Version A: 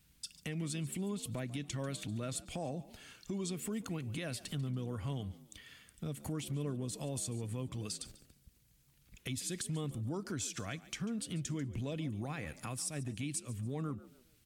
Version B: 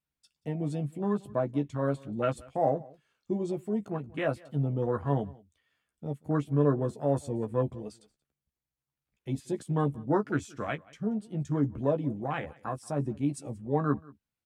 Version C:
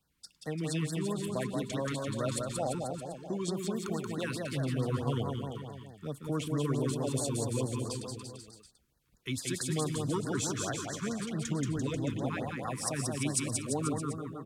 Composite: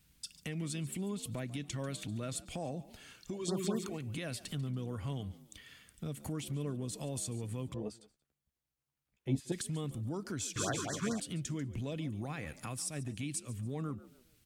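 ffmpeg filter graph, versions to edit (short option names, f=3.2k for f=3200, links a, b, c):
-filter_complex "[2:a]asplit=2[a][b];[0:a]asplit=4[c][d][e][f];[c]atrim=end=3.53[g];[a]atrim=start=3.29:end=4.01[h];[d]atrim=start=3.77:end=7.742[i];[1:a]atrim=start=7.738:end=9.522[j];[e]atrim=start=9.518:end=10.562[k];[b]atrim=start=10.558:end=11.202[l];[f]atrim=start=11.198[m];[g][h]acrossfade=d=0.24:c1=tri:c2=tri[n];[n][i]acrossfade=d=0.24:c1=tri:c2=tri[o];[o][j]acrossfade=d=0.004:c1=hsin:c2=hsin[p];[p][k]acrossfade=d=0.004:c1=hsin:c2=hsin[q];[q][l]acrossfade=d=0.004:c1=hsin:c2=hsin[r];[r][m]acrossfade=d=0.004:c1=hsin:c2=hsin"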